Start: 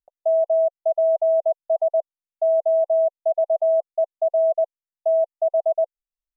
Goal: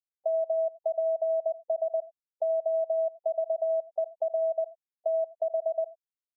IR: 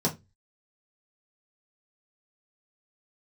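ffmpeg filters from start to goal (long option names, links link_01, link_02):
-filter_complex "[0:a]acompressor=threshold=-22dB:ratio=8,asplit=2[link_01][link_02];[1:a]atrim=start_sample=2205,lowshelf=frequency=490:gain=-8,adelay=77[link_03];[link_02][link_03]afir=irnorm=-1:irlink=0,volume=-25.5dB[link_04];[link_01][link_04]amix=inputs=2:normalize=0,afftfilt=real='re*gte(hypot(re,im),0.0501)':imag='im*gte(hypot(re,im),0.0501)':win_size=1024:overlap=0.75,volume=-3.5dB"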